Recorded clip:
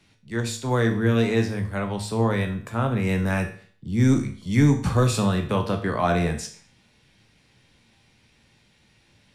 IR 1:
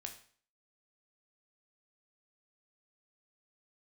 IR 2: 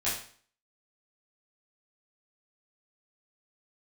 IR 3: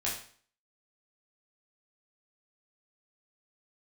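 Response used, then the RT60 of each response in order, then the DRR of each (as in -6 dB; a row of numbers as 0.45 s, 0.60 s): 1; 0.50 s, 0.50 s, 0.50 s; 4.0 dB, -10.5 dB, -6.0 dB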